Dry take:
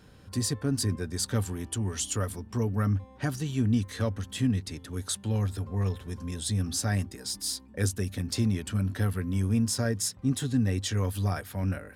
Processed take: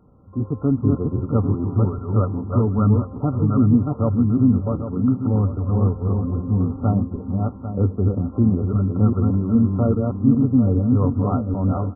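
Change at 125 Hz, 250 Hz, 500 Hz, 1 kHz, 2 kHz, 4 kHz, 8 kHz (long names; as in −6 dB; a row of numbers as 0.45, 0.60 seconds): +9.5 dB, +12.0 dB, +10.0 dB, +9.5 dB, below −15 dB, below −40 dB, below −40 dB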